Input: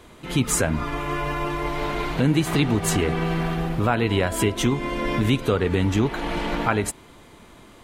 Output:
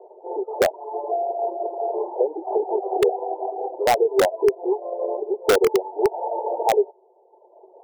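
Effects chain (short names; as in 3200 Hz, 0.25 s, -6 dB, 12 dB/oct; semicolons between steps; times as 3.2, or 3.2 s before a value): 1.11–1.94 sample sorter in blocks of 64 samples; Chebyshev band-pass 370–900 Hz, order 5; in parallel at -4 dB: wrapped overs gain 17.5 dB; on the sum: reverb removal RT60 1.3 s; gain +5.5 dB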